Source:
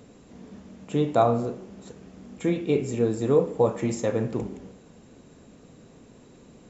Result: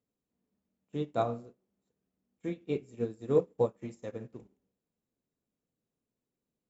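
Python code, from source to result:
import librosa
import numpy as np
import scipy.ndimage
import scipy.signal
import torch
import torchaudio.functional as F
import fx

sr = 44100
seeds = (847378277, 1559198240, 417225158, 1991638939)

y = fx.dynamic_eq(x, sr, hz=880.0, q=1.5, threshold_db=-38.0, ratio=4.0, max_db=-4)
y = fx.upward_expand(y, sr, threshold_db=-40.0, expansion=2.5)
y = y * librosa.db_to_amplitude(-2.5)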